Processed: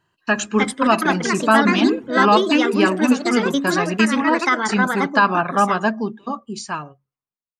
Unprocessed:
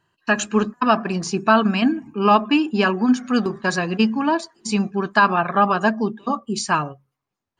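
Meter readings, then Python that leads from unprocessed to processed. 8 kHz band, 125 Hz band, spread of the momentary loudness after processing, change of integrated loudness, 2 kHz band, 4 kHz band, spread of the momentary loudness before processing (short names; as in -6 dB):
+2.0 dB, -0.5 dB, 13 LU, +2.5 dB, +3.5 dB, +2.5 dB, 8 LU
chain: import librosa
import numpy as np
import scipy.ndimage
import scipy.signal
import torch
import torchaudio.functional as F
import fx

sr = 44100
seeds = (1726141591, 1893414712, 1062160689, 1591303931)

y = fx.fade_out_tail(x, sr, length_s=1.94)
y = fx.echo_pitch(y, sr, ms=369, semitones=4, count=2, db_per_echo=-3.0)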